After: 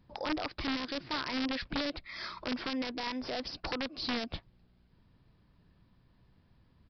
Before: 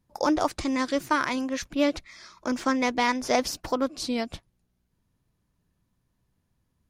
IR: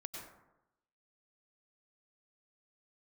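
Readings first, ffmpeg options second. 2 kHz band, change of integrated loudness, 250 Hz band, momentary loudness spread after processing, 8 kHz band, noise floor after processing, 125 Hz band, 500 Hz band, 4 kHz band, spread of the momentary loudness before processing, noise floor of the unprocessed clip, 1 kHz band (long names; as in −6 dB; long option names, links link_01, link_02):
−7.5 dB, −9.0 dB, −9.5 dB, 5 LU, −20.0 dB, −67 dBFS, −2.5 dB, −12.0 dB, −2.0 dB, 7 LU, −75 dBFS, −12.0 dB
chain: -af "acompressor=threshold=-38dB:ratio=8,alimiter=level_in=10dB:limit=-24dB:level=0:latency=1:release=11,volume=-10dB,aresample=11025,aeval=exprs='(mod(56.2*val(0)+1,2)-1)/56.2':channel_layout=same,aresample=44100,volume=8.5dB"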